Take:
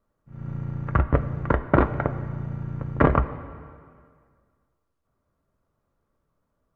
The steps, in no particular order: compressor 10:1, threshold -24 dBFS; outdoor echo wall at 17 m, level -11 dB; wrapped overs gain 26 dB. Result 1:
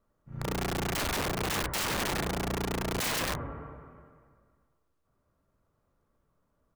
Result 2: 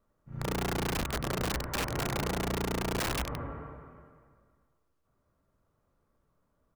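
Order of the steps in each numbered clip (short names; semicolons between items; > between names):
outdoor echo > wrapped overs > compressor; compressor > outdoor echo > wrapped overs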